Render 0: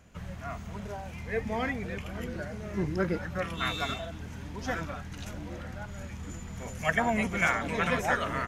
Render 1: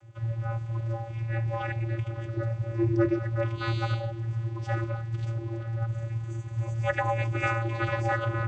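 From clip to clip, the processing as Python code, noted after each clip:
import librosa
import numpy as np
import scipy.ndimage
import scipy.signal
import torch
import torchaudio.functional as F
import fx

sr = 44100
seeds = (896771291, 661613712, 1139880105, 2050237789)

y = fx.vocoder(x, sr, bands=16, carrier='square', carrier_hz=114.0)
y = y * librosa.db_to_amplitude(5.0)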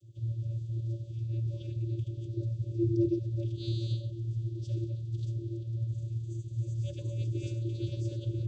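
y = scipy.signal.sosfilt(scipy.signal.ellip(3, 1.0, 40, [430.0, 3500.0], 'bandstop', fs=sr, output='sos'), x)
y = y * librosa.db_to_amplitude(-2.5)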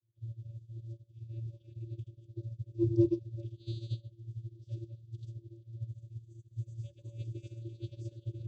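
y = fx.upward_expand(x, sr, threshold_db=-43.0, expansion=2.5)
y = y * librosa.db_to_amplitude(3.0)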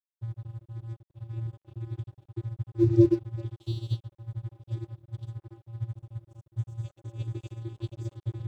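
y = np.sign(x) * np.maximum(np.abs(x) - 10.0 ** (-55.5 / 20.0), 0.0)
y = y * librosa.db_to_amplitude(7.5)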